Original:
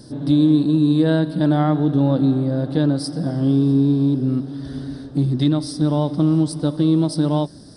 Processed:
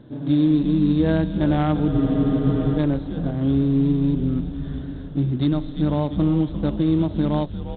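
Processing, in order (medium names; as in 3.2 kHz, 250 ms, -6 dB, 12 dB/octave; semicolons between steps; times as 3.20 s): frequency-shifting echo 348 ms, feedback 52%, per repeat -110 Hz, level -10 dB; spectral freeze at 1.96 s, 0.82 s; trim -3 dB; IMA ADPCM 32 kbps 8 kHz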